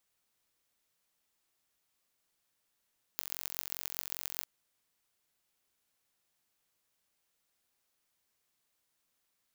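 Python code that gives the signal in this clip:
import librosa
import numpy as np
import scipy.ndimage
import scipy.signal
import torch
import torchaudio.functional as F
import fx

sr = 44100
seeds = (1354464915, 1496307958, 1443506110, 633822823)

y = fx.impulse_train(sr, length_s=1.26, per_s=45.0, accent_every=6, level_db=-7.0)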